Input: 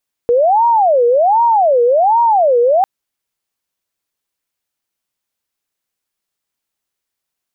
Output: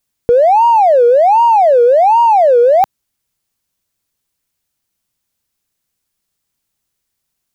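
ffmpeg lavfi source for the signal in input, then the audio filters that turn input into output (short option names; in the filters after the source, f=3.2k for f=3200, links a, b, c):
-f lavfi -i "aevalsrc='0.398*sin(2*PI*(708.5*t-234.5/(2*PI*1.3)*sin(2*PI*1.3*t)))':d=2.55:s=44100"
-filter_complex "[0:a]asplit=2[a][b];[b]volume=11dB,asoftclip=hard,volume=-11dB,volume=-8dB[c];[a][c]amix=inputs=2:normalize=0,bass=f=250:g=10,treble=f=4k:g=4"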